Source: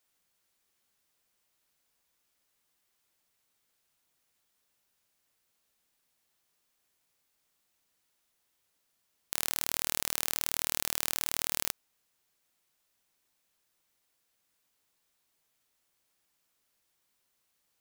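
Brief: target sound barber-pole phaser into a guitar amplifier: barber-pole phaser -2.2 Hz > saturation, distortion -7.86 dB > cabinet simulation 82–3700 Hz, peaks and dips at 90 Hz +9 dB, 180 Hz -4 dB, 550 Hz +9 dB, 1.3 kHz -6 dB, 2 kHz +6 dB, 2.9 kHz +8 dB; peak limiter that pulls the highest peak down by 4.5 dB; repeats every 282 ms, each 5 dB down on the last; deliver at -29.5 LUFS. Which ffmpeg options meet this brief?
-filter_complex "[0:a]alimiter=limit=0.422:level=0:latency=1,aecho=1:1:282|564|846|1128|1410|1692|1974:0.562|0.315|0.176|0.0988|0.0553|0.031|0.0173,asplit=2[s0][s1];[s1]afreqshift=-2.2[s2];[s0][s2]amix=inputs=2:normalize=1,asoftclip=threshold=0.0708,highpass=82,equalizer=f=90:t=q:w=4:g=9,equalizer=f=180:t=q:w=4:g=-4,equalizer=f=550:t=q:w=4:g=9,equalizer=f=1300:t=q:w=4:g=-6,equalizer=f=2000:t=q:w=4:g=6,equalizer=f=2900:t=q:w=4:g=8,lowpass=f=3700:w=0.5412,lowpass=f=3700:w=1.3066,volume=7.08"

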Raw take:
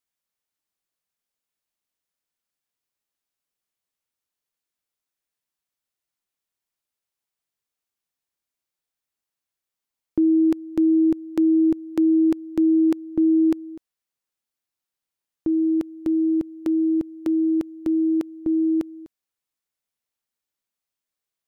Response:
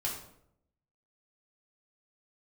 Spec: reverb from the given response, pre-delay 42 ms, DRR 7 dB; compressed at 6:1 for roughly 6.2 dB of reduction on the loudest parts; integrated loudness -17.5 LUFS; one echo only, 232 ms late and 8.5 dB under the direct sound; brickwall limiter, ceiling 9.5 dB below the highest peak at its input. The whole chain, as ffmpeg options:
-filter_complex "[0:a]acompressor=threshold=0.0794:ratio=6,alimiter=limit=0.0668:level=0:latency=1,aecho=1:1:232:0.376,asplit=2[s0][s1];[1:a]atrim=start_sample=2205,adelay=42[s2];[s1][s2]afir=irnorm=-1:irlink=0,volume=0.299[s3];[s0][s3]amix=inputs=2:normalize=0,volume=6.31"

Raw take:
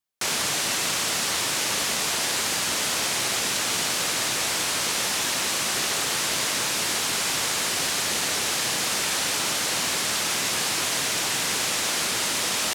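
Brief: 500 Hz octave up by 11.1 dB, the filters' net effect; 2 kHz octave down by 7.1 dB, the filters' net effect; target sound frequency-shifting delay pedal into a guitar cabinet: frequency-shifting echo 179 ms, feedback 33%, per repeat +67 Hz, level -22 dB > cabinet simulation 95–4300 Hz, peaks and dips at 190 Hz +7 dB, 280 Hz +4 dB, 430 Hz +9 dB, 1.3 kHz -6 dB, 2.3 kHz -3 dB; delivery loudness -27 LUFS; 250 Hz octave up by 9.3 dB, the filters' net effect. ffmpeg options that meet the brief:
-filter_complex "[0:a]equalizer=f=250:t=o:g=4,equalizer=f=500:t=o:g=7,equalizer=f=2000:t=o:g=-7,asplit=3[s0][s1][s2];[s1]adelay=179,afreqshift=67,volume=0.0794[s3];[s2]adelay=358,afreqshift=134,volume=0.0263[s4];[s0][s3][s4]amix=inputs=3:normalize=0,highpass=95,equalizer=f=190:t=q:w=4:g=7,equalizer=f=280:t=q:w=4:g=4,equalizer=f=430:t=q:w=4:g=9,equalizer=f=1300:t=q:w=4:g=-6,equalizer=f=2300:t=q:w=4:g=-3,lowpass=f=4300:w=0.5412,lowpass=f=4300:w=1.3066,volume=0.841"

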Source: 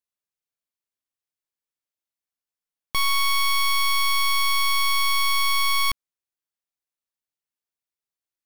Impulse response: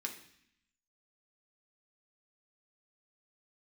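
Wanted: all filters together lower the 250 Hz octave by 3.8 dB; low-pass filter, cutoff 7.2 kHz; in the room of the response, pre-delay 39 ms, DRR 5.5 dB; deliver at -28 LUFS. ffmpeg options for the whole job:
-filter_complex "[0:a]lowpass=7200,equalizer=f=250:t=o:g=-6,asplit=2[s0][s1];[1:a]atrim=start_sample=2205,adelay=39[s2];[s1][s2]afir=irnorm=-1:irlink=0,volume=0.531[s3];[s0][s3]amix=inputs=2:normalize=0,volume=0.447"

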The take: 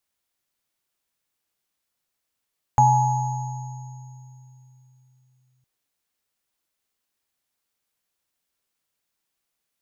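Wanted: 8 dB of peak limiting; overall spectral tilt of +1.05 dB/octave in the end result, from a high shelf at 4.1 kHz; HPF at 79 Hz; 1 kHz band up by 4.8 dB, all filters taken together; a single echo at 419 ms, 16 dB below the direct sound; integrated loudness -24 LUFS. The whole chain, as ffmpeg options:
-af "highpass=79,equalizer=f=1000:t=o:g=6,highshelf=f=4100:g=-3,alimiter=limit=0.266:level=0:latency=1,aecho=1:1:419:0.158,volume=0.841"

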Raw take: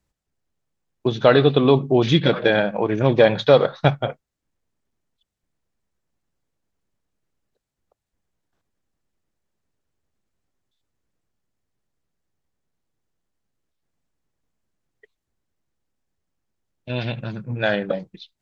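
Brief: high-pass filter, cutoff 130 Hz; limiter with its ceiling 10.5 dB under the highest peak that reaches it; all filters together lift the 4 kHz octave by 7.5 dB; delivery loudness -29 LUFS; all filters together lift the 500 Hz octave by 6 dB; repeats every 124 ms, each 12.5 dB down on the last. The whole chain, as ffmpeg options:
-af "highpass=130,equalizer=f=500:t=o:g=7,equalizer=f=4000:t=o:g=9,alimiter=limit=0.447:level=0:latency=1,aecho=1:1:124|248|372:0.237|0.0569|0.0137,volume=0.316"

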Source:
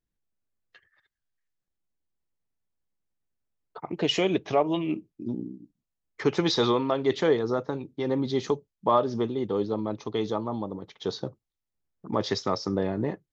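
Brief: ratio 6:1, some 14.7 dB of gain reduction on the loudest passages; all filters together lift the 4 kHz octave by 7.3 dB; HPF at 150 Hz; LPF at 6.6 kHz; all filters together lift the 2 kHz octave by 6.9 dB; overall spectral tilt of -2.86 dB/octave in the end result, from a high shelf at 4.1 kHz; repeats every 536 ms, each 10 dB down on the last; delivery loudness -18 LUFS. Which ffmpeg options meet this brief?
-af "highpass=150,lowpass=6600,equalizer=f=2000:t=o:g=6,equalizer=f=4000:t=o:g=5,highshelf=f=4100:g=5,acompressor=threshold=0.0282:ratio=6,aecho=1:1:536|1072|1608|2144:0.316|0.101|0.0324|0.0104,volume=7.5"

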